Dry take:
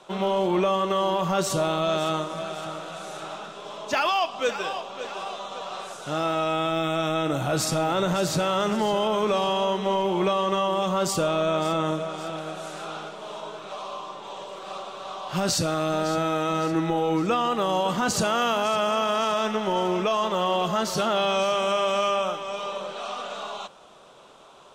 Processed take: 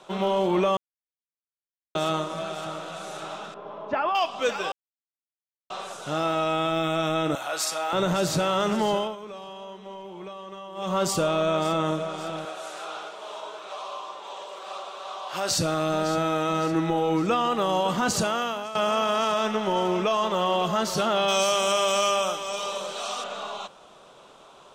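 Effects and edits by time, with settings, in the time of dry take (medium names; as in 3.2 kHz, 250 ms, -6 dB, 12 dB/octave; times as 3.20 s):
0.77–1.95 s: mute
3.54–4.15 s: low-pass 1.4 kHz
4.72–5.70 s: mute
7.35–7.93 s: high-pass 770 Hz
8.94–10.96 s: dip -16 dB, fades 0.22 s
12.45–15.51 s: high-pass 460 Hz
18.14–18.75 s: fade out, to -14 dB
21.28–23.24 s: tone controls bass -3 dB, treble +13 dB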